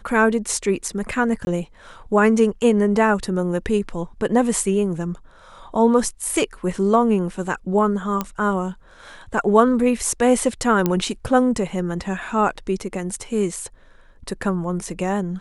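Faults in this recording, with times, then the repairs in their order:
1.45–1.47 gap 21 ms
8.21 pop -9 dBFS
10.86 pop -6 dBFS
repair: de-click; interpolate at 1.45, 21 ms

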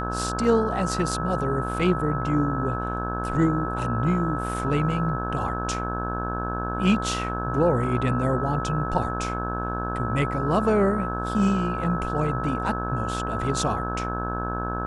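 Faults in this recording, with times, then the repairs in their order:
buzz 60 Hz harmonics 28 -30 dBFS
tone 1300 Hz -30 dBFS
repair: de-hum 60 Hz, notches 28; notch 1300 Hz, Q 30

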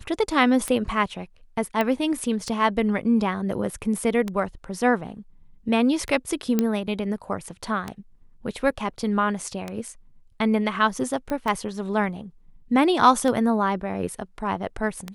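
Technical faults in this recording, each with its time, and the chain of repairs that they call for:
tick 33 1/3 rpm -14 dBFS
1.81 pop -11 dBFS
6.59 pop -8 dBFS
11.3 pop -17 dBFS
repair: de-click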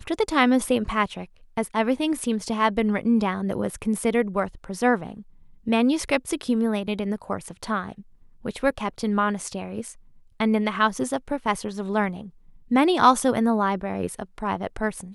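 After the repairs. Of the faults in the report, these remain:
none

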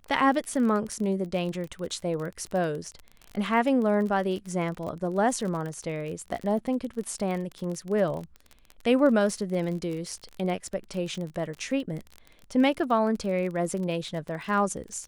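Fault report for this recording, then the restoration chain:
crackle 33/s -32 dBFS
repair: de-click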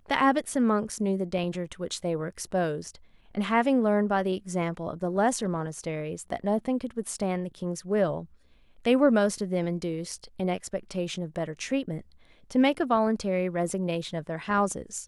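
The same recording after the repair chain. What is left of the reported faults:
none

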